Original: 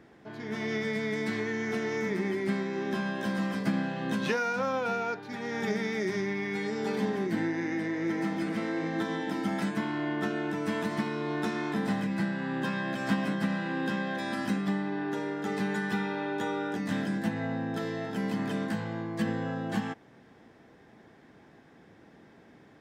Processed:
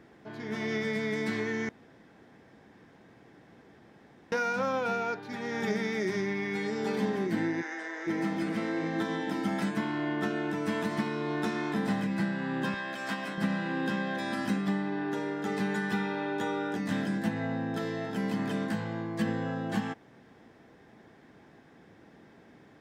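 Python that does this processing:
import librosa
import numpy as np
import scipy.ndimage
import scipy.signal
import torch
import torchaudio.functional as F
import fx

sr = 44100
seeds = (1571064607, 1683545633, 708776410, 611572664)

y = fx.cabinet(x, sr, low_hz=450.0, low_slope=24, high_hz=8700.0, hz=(510.0, 1500.0, 2400.0, 4300.0, 7000.0), db=(-6, 6, -6, -4, 5), at=(7.61, 8.06), fade=0.02)
y = fx.highpass(y, sr, hz=670.0, slope=6, at=(12.74, 13.38))
y = fx.edit(y, sr, fx.room_tone_fill(start_s=1.69, length_s=2.63), tone=tone)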